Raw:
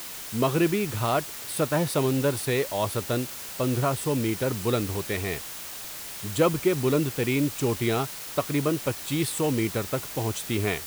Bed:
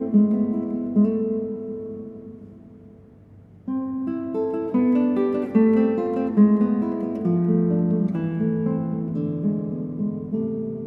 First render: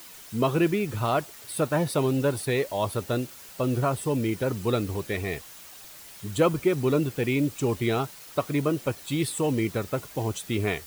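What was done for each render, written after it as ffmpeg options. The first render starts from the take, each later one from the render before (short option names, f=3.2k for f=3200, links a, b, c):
-af "afftdn=nr=9:nf=-38"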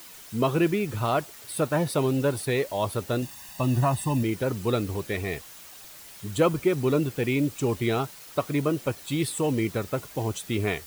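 -filter_complex "[0:a]asettb=1/sr,asplit=3[a][b][c];[a]atrim=end=3.224[d];[b]atrim=start=3.22:end=4.23,asetpts=PTS-STARTPTS,afade=t=in:d=0.004:c=qsin,afade=t=out:st=1.006:d=0.004:c=qsin,aecho=1:1:1.1:0.79,atrim=end_sample=44541[e];[c]atrim=start=4.226[f];[d][e]acrossfade=d=0.004:c1=hsin:c2=qsin[g];[g][f]acrossfade=d=0.004:c1=qsin:c2=hsin"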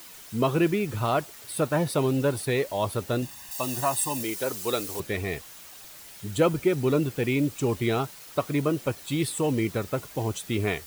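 -filter_complex "[0:a]asettb=1/sr,asplit=3[a][b][c];[a]atrim=end=3.514[d];[b]atrim=start=3.51:end=5,asetpts=PTS-STARTPTS,afade=t=in:d=0.004:c=qsin,afade=t=out:st=1.486:d=0.004:c=qsin,bass=f=250:g=-15,treble=f=4k:g=10[e];[c]atrim=start=4.996[f];[d][e]acrossfade=d=0.004:c1=hsin:c2=qsin[g];[g][f]acrossfade=d=0.004:c1=qsin:c2=hsin,asettb=1/sr,asplit=3[h][i][j];[h]atrim=end=6.104[k];[i]atrim=start=6.1:end=6.87,asetpts=PTS-STARTPTS,afade=t=in:d=0.004:c=qsin,afade=t=out:st=0.766:d=0.004:c=qsin,bandreject=f=1.1k:w=8.8[l];[j]atrim=start=6.866[m];[k][l]acrossfade=d=0.004:c1=hsin:c2=qsin[n];[n][m]acrossfade=d=0.004:c1=qsin:c2=hsin"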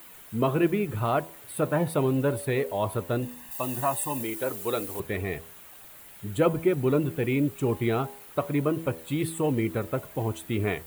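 -af "equalizer=f=5.4k:t=o:w=1.1:g=-13.5,bandreject=f=81.67:t=h:w=4,bandreject=f=163.34:t=h:w=4,bandreject=f=245.01:t=h:w=4,bandreject=f=326.68:t=h:w=4,bandreject=f=408.35:t=h:w=4,bandreject=f=490.02:t=h:w=4,bandreject=f=571.69:t=h:w=4,bandreject=f=653.36:t=h:w=4,bandreject=f=735.03:t=h:w=4,bandreject=f=816.7:t=h:w=4,bandreject=f=898.37:t=h:w=4,bandreject=f=980.04:t=h:w=4,bandreject=f=1.06171k:t=h:w=4"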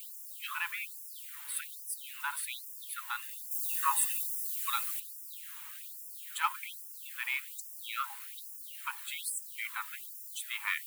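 -filter_complex "[0:a]asplit=2[a][b];[b]volume=23.5dB,asoftclip=hard,volume=-23.5dB,volume=-9dB[c];[a][c]amix=inputs=2:normalize=0,afftfilt=real='re*gte(b*sr/1024,810*pow(5100/810,0.5+0.5*sin(2*PI*1.2*pts/sr)))':imag='im*gte(b*sr/1024,810*pow(5100/810,0.5+0.5*sin(2*PI*1.2*pts/sr)))':win_size=1024:overlap=0.75"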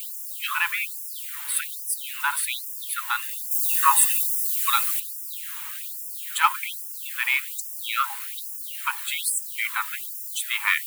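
-af "volume=11.5dB"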